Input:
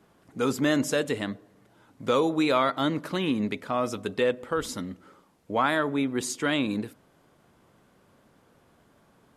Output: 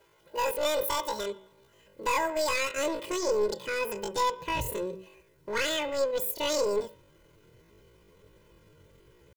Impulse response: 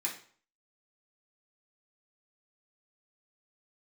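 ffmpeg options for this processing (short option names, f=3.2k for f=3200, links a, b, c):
-af "asubboost=boost=6.5:cutoff=150,aeval=exprs='clip(val(0),-1,0.0562)':c=same,highshelf=f=9k:g=10.5,aecho=1:1:4:0.85,bandreject=f=94.69:t=h:w=4,bandreject=f=189.38:t=h:w=4,bandreject=f=284.07:t=h:w=4,bandreject=f=378.76:t=h:w=4,bandreject=f=473.45:t=h:w=4,bandreject=f=568.14:t=h:w=4,bandreject=f=662.83:t=h:w=4,bandreject=f=757.52:t=h:w=4,bandreject=f=852.21:t=h:w=4,bandreject=f=946.9:t=h:w=4,bandreject=f=1.04159k:t=h:w=4,bandreject=f=1.13628k:t=h:w=4,bandreject=f=1.23097k:t=h:w=4,bandreject=f=1.32566k:t=h:w=4,bandreject=f=1.42035k:t=h:w=4,bandreject=f=1.51504k:t=h:w=4,bandreject=f=1.60973k:t=h:w=4,bandreject=f=1.70442k:t=h:w=4,bandreject=f=1.79911k:t=h:w=4,asetrate=88200,aresample=44100,atempo=0.5,volume=-4dB"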